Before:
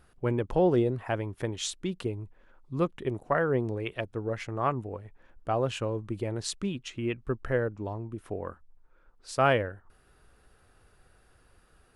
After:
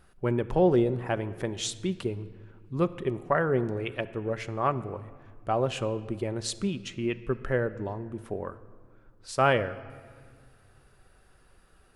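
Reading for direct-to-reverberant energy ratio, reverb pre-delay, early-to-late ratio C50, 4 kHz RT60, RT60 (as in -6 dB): 11.5 dB, 5 ms, 15.5 dB, 1.3 s, 1.8 s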